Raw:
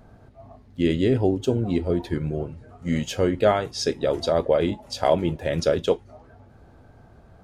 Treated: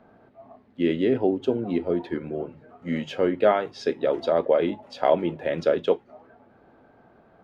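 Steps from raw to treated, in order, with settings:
three-way crossover with the lows and the highs turned down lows −19 dB, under 180 Hz, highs −21 dB, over 3,500 Hz
mains-hum notches 50/100/150 Hz

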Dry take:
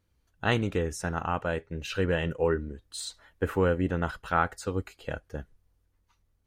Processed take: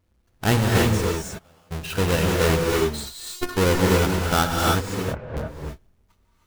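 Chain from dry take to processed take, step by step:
each half-wave held at its own peak
0:00.92–0:01.80: gate with flip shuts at −23 dBFS, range −32 dB
0:03.03–0:03.57: phases set to zero 358 Hz
0:04.83–0:05.37: low-pass filter 1,400 Hz 12 dB per octave
reverb whose tail is shaped and stops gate 350 ms rising, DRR −1.5 dB

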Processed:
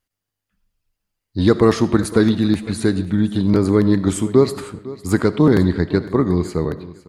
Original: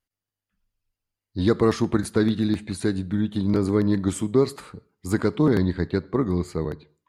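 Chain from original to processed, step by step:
repeating echo 506 ms, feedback 24%, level −18 dB
comb and all-pass reverb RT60 0.67 s, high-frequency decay 0.7×, pre-delay 30 ms, DRR 15.5 dB
level +6 dB

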